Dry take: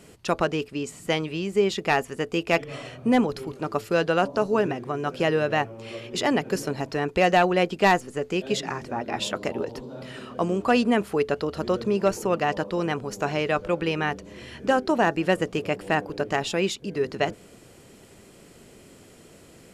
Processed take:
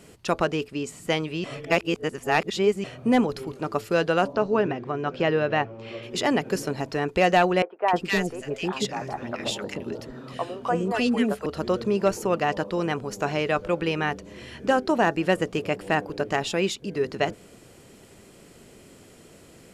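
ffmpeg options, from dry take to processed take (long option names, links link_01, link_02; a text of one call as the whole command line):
ffmpeg -i in.wav -filter_complex "[0:a]asettb=1/sr,asplit=3[link_01][link_02][link_03];[link_01]atrim=end=4.334[link_04];[link_02]atrim=start=4.33:end=6.03,asetpts=PTS-STARTPTS,afade=type=in:duration=0.004:curve=qsin,afade=type=out:start_time=1.696:duration=0.004:curve=qsin,lowpass=4000[link_05];[link_03]atrim=start=6.026[link_06];[link_04][link_05]acrossfade=duration=0.004:curve1=hsin:curve2=qsin[link_07];[link_07][link_06]acrossfade=duration=0.004:curve1=qsin:curve2=hsin,asettb=1/sr,asplit=3[link_08][link_09][link_10];[link_08]atrim=end=7.624[link_11];[link_09]atrim=start=7.62:end=11.46,asetpts=PTS-STARTPTS,afade=type=in:duration=0.004:curve=qsin,afade=type=out:start_time=3.836:duration=0.004:curve=qsin,acrossover=split=470|1500[link_12][link_13][link_14];[link_14]adelay=260[link_15];[link_12]adelay=310[link_16];[link_16][link_13][link_15]amix=inputs=3:normalize=0,atrim=end_sample=169344[link_17];[link_10]atrim=start=11.456[link_18];[link_11][link_17]acrossfade=duration=0.004:curve1=hsin:curve2=qsin[link_19];[link_19][link_18]acrossfade=duration=0.004:curve1=qsin:curve2=hsin,asplit=3[link_20][link_21][link_22];[link_20]atrim=end=1.442[link_23];[link_21]atrim=start=1.438:end=2.842,asetpts=PTS-STARTPTS,areverse[link_24];[link_22]atrim=start=2.838[link_25];[link_23][link_24]acrossfade=duration=0.004:curve1=hsin:curve2=hsin[link_26];[link_26][link_25]acrossfade=duration=0.004:curve1=hsin:curve2=hsin" out.wav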